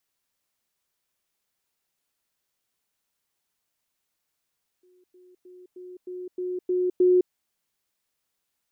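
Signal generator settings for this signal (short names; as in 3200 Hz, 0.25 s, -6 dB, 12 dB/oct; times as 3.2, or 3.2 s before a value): level ladder 363 Hz -57 dBFS, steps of 6 dB, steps 8, 0.21 s 0.10 s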